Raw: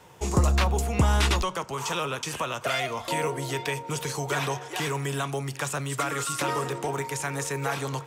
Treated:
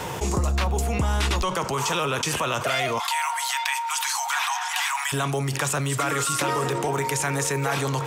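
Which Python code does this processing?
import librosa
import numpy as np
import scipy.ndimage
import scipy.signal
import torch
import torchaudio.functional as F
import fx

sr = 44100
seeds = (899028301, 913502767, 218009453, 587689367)

y = fx.steep_highpass(x, sr, hz=780.0, slope=72, at=(2.98, 5.12), fade=0.02)
y = fx.env_flatten(y, sr, amount_pct=70)
y = y * librosa.db_to_amplitude(-4.0)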